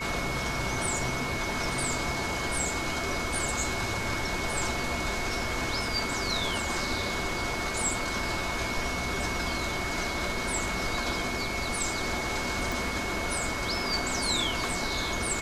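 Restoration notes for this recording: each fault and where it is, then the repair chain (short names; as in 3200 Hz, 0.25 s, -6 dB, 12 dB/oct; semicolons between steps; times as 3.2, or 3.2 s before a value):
tone 2200 Hz -35 dBFS
12.72 pop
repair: de-click; notch 2200 Hz, Q 30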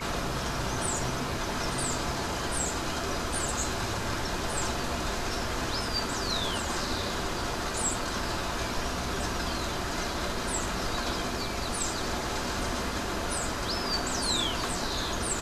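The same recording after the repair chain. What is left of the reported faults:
none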